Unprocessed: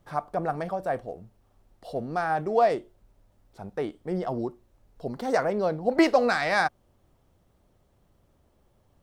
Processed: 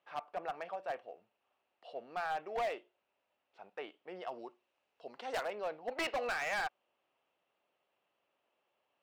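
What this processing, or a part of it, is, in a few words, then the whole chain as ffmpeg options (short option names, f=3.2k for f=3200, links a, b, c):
megaphone: -filter_complex "[0:a]highpass=620,lowpass=3.4k,equalizer=f=2.7k:t=o:w=0.43:g=12,asoftclip=type=hard:threshold=-23.5dB,asettb=1/sr,asplit=3[a][b][c];[a]atrim=end=4.214[d];[b]atrim=start=4.21:end=5.55,asetpts=PTS-STARTPTS,afade=t=in:d=0.004:c=qsin,afade=t=out:st=1.336:d=0.004:c=qsin,aemphasis=mode=production:type=cd[e];[c]atrim=start=5.546[f];[d][e]acrossfade=d=0.004:c1=hsin:c2=qsin[g];[g][f]acrossfade=d=0.004:c1=qsin:c2=hsin,volume=-8dB"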